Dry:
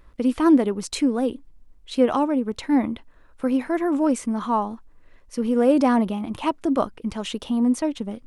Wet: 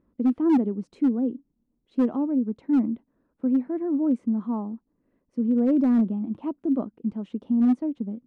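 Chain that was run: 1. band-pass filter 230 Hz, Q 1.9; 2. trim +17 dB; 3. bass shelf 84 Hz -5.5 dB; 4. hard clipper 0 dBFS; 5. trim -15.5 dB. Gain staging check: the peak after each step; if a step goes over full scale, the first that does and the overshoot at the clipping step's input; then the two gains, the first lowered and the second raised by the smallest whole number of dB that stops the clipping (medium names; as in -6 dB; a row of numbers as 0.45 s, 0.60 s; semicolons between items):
-10.5 dBFS, +6.5 dBFS, +6.0 dBFS, 0.0 dBFS, -15.5 dBFS; step 2, 6.0 dB; step 2 +11 dB, step 5 -9.5 dB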